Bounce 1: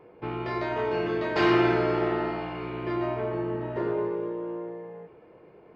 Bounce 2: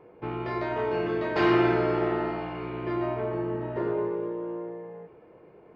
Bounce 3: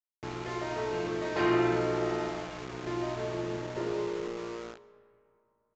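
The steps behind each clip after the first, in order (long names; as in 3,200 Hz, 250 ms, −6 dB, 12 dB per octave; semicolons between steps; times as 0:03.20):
high-shelf EQ 3,600 Hz −7 dB
centre clipping without the shift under −33 dBFS; convolution reverb RT60 2.8 s, pre-delay 75 ms, DRR 18.5 dB; downsampling to 16,000 Hz; level −4.5 dB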